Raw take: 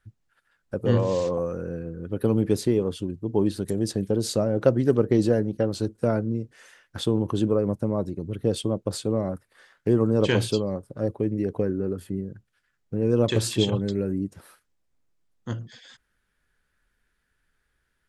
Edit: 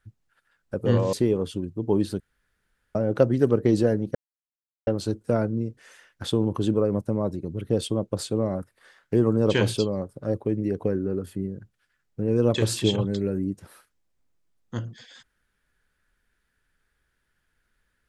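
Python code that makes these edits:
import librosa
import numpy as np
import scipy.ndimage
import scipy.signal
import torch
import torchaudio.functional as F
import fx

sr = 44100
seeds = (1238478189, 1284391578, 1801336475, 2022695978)

y = fx.edit(x, sr, fx.cut(start_s=1.13, length_s=1.46),
    fx.room_tone_fill(start_s=3.66, length_s=0.75),
    fx.insert_silence(at_s=5.61, length_s=0.72), tone=tone)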